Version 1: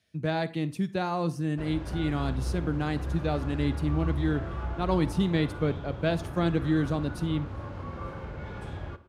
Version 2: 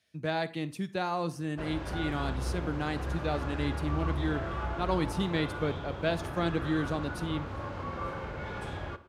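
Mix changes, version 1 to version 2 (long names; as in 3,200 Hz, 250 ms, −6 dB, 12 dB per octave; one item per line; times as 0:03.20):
background +5.0 dB
master: add low-shelf EQ 330 Hz −8 dB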